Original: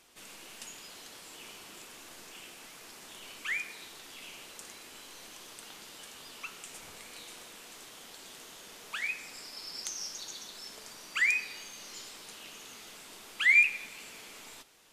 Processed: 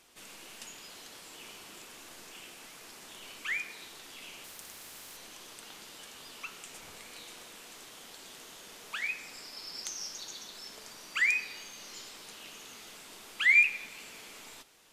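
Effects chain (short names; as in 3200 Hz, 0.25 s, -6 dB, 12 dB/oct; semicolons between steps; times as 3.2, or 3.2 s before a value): dynamic EQ 9300 Hz, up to -3 dB, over -53 dBFS, Q 1.4; 4.44–5.17 spectral compressor 4:1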